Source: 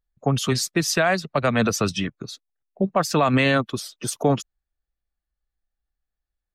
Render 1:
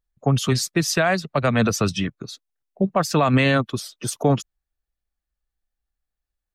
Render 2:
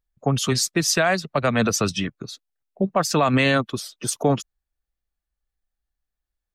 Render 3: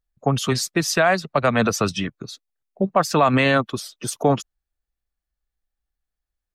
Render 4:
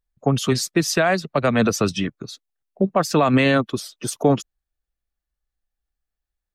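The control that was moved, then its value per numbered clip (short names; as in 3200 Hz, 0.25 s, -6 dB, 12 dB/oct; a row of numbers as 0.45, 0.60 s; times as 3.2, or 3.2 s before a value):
dynamic EQ, frequency: 110, 6900, 930, 330 Hz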